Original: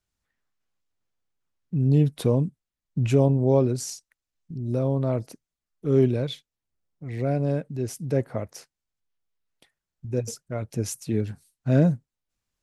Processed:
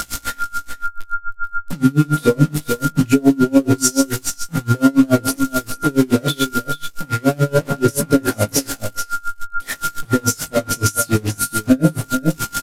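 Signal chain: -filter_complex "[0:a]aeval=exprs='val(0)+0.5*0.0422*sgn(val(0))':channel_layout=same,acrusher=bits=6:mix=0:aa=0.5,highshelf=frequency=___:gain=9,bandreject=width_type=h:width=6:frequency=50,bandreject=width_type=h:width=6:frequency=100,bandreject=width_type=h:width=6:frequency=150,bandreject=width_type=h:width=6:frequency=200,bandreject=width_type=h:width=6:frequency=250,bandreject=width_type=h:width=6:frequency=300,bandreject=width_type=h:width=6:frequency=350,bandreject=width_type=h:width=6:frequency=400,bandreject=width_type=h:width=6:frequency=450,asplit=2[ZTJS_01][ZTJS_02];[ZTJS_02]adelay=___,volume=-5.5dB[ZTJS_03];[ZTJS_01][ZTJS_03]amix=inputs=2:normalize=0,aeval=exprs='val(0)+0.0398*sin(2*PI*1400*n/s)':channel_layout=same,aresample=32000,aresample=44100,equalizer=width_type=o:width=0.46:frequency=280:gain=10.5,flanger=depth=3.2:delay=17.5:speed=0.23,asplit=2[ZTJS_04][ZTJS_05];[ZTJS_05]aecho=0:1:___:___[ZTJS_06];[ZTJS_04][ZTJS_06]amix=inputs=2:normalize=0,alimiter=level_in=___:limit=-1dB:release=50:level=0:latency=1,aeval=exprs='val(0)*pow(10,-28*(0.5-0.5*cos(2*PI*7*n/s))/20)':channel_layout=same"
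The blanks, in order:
4500, 19, 436, 0.355, 13dB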